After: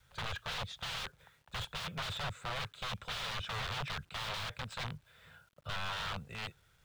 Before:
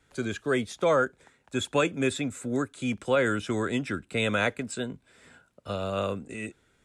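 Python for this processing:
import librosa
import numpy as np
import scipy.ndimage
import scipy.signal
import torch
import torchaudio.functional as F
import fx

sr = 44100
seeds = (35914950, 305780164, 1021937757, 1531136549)

y = (np.mod(10.0 ** (28.5 / 20.0) * x + 1.0, 2.0) - 1.0) / 10.0 ** (28.5 / 20.0)
y = fx.curve_eq(y, sr, hz=(150.0, 290.0, 500.0, 740.0, 1300.0, 2100.0, 3600.0, 5400.0, 11000.0), db=(0, -25, -8, -7, -3, -7, -2, -13, -24))
y = fx.quant_dither(y, sr, seeds[0], bits=12, dither='none')
y = y * librosa.db_to_amplitude(1.5)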